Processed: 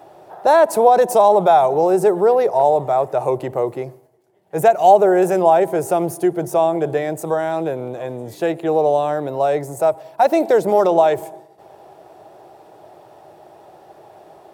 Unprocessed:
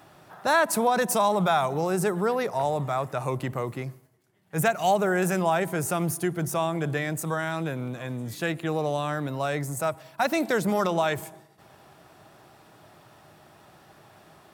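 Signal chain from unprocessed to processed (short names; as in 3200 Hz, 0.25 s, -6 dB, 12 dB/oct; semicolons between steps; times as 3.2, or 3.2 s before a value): band shelf 550 Hz +13.5 dB; gain -1 dB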